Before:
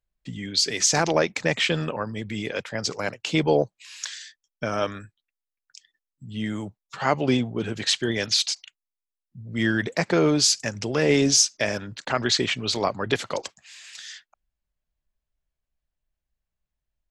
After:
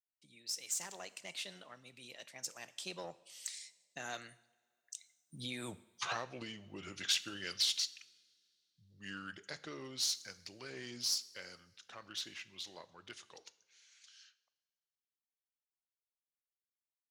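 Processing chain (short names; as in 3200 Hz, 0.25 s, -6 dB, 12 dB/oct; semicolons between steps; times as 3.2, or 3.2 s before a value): one diode to ground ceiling -12.5 dBFS; Doppler pass-by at 5.72, 49 m/s, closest 2.6 m; low shelf 210 Hz +7 dB; compressor 10:1, threshold -50 dBFS, peak gain reduction 21.5 dB; tilt +4 dB/oct; two-slope reverb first 0.71 s, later 2.5 s, from -18 dB, DRR 14.5 dB; gain +14.5 dB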